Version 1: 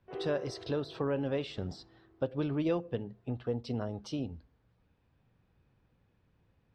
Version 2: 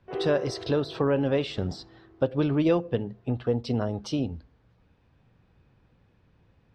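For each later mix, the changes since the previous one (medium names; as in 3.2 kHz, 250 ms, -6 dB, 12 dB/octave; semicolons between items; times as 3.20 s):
speech +8.0 dB; background +8.5 dB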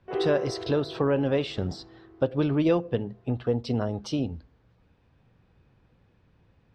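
background +3.5 dB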